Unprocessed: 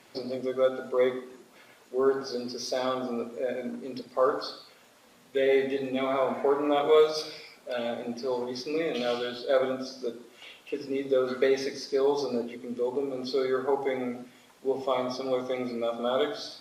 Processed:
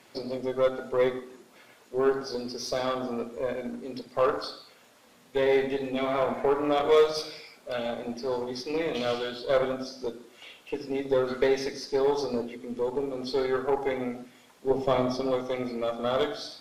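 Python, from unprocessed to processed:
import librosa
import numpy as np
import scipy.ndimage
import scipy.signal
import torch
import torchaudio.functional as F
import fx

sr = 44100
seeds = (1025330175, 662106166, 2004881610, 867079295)

y = fx.cheby_harmonics(x, sr, harmonics=(8,), levels_db=(-25,), full_scale_db=-9.5)
y = fx.low_shelf(y, sr, hz=430.0, db=8.0, at=(14.7, 15.31))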